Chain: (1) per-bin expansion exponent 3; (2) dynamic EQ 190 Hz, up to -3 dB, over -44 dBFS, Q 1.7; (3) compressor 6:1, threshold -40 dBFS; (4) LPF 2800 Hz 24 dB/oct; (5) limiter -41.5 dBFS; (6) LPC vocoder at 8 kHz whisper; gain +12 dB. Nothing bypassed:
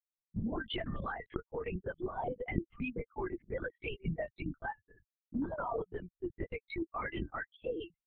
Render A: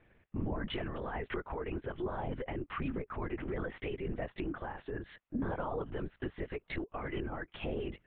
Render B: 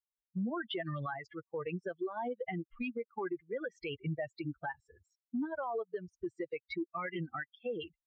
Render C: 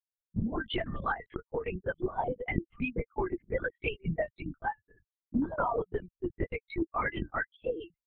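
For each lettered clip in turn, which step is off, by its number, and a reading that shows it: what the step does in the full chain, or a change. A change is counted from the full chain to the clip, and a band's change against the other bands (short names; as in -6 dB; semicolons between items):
1, 125 Hz band +2.0 dB; 6, crest factor change -13.0 dB; 5, mean gain reduction 3.0 dB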